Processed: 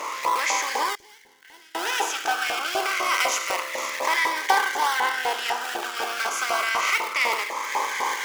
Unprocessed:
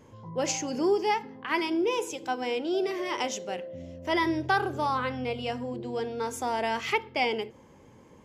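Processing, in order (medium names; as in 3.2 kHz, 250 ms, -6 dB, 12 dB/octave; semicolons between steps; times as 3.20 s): spectral levelling over time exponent 0.4; recorder AGC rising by 16 dB/s; 3.04–3.90 s: treble shelf 9 kHz +11 dB; in parallel at -4.5 dB: decimation with a swept rate 36×, swing 100% 2.4 Hz; on the sum: LFO high-pass saw up 4 Hz 800–1800 Hz; 0.95–1.75 s: amplifier tone stack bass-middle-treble 10-0-1; Shepard-style phaser falling 0.28 Hz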